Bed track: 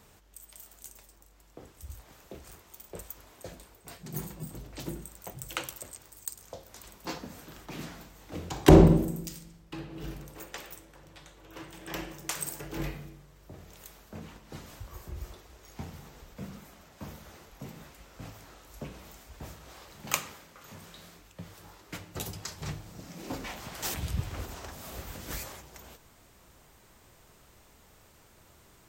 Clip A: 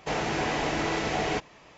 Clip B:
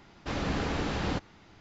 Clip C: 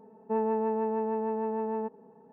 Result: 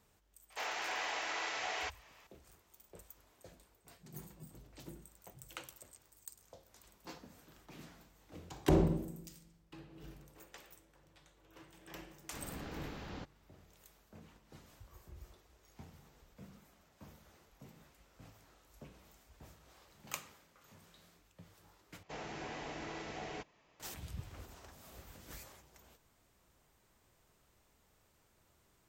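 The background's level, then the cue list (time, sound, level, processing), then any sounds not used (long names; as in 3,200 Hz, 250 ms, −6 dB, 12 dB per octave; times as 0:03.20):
bed track −13 dB
0:00.50: mix in A −6.5 dB + high-pass filter 900 Hz
0:12.06: mix in B −15.5 dB
0:22.03: overwrite with A −16.5 dB
not used: C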